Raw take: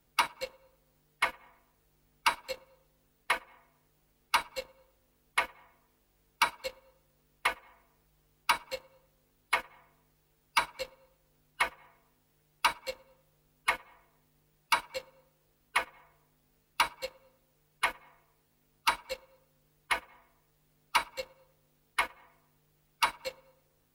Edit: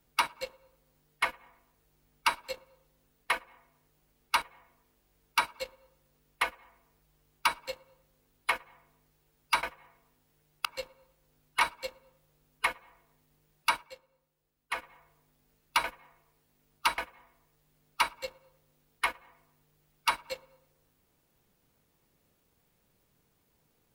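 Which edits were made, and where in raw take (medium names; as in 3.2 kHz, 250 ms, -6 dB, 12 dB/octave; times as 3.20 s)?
4.42–5.46 s: delete
10.67–11.63 s: move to 12.65 s
14.81–15.86 s: dip -10.5 dB, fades 0.13 s
16.88–17.86 s: delete
19.00–19.93 s: delete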